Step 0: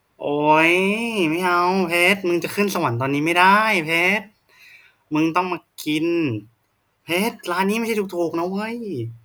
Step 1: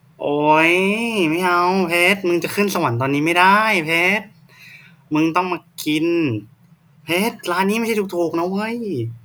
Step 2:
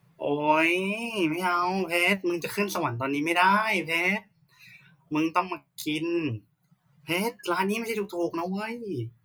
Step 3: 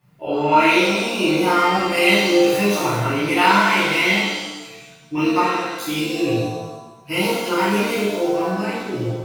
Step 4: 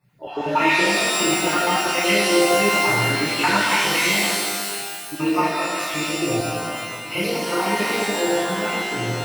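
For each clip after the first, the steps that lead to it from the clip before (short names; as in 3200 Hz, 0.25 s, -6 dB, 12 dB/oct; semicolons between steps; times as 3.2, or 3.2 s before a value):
band noise 120–180 Hz -57 dBFS; in parallel at -3 dB: compressor, threshold -25 dBFS, peak gain reduction 14.5 dB
reverb removal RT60 0.85 s; flange 0.95 Hz, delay 9.5 ms, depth 7.2 ms, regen +53%; gain -3.5 dB
shimmer reverb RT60 1.1 s, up +7 st, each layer -8 dB, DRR -10 dB; gain -3.5 dB
random spectral dropouts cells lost 26%; shimmer reverb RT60 1.8 s, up +12 st, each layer -2 dB, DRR 3 dB; gain -4 dB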